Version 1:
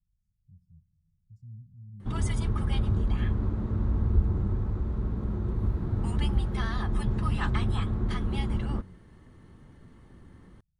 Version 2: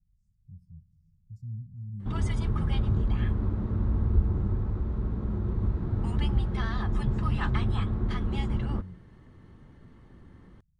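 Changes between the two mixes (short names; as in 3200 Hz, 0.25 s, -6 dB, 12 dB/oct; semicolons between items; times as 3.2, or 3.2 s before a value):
speech +7.5 dB; background: add air absorption 68 m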